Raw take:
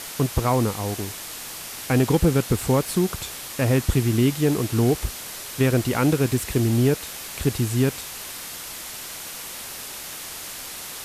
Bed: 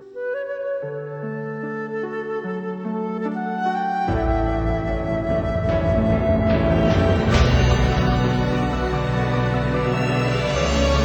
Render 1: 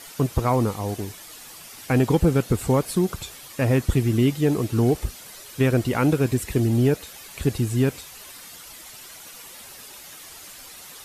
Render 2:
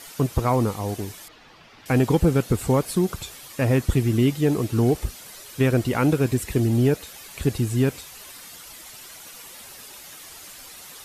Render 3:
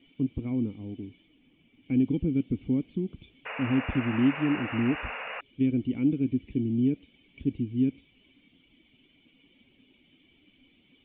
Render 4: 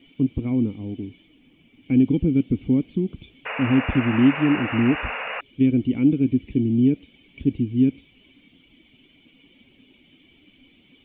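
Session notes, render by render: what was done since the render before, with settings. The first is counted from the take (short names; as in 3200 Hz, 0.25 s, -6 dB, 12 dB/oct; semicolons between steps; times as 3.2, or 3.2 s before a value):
denoiser 10 dB, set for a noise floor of -36 dBFS
1.28–1.86 air absorption 250 m
vocal tract filter i; 3.45–5.41 painted sound noise 420–2900 Hz -37 dBFS
gain +7 dB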